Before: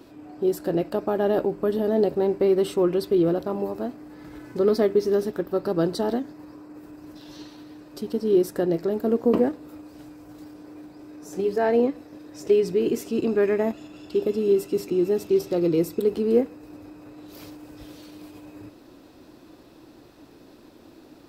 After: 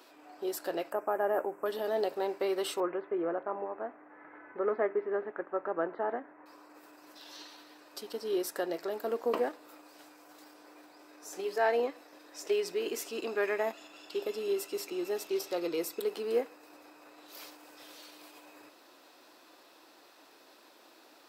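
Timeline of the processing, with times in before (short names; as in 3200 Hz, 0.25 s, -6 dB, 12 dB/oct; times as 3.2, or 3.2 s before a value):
0.92–1.66 Butterworth band-stop 4000 Hz, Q 0.68
2.8–6.46 steep low-pass 2100 Hz
whole clip: HPF 760 Hz 12 dB/oct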